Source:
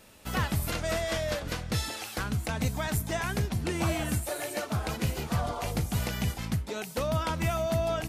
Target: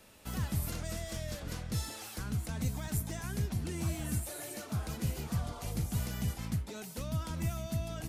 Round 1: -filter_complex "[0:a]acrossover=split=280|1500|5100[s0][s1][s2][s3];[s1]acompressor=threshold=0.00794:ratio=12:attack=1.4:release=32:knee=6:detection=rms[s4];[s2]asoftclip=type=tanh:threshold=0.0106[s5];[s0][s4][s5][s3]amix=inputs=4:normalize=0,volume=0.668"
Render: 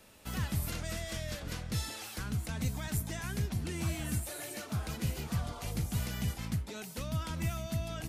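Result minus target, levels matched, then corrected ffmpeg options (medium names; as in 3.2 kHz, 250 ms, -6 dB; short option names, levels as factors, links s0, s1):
saturation: distortion -5 dB
-filter_complex "[0:a]acrossover=split=280|1500|5100[s0][s1][s2][s3];[s1]acompressor=threshold=0.00794:ratio=12:attack=1.4:release=32:knee=6:detection=rms[s4];[s2]asoftclip=type=tanh:threshold=0.00398[s5];[s0][s4][s5][s3]amix=inputs=4:normalize=0,volume=0.668"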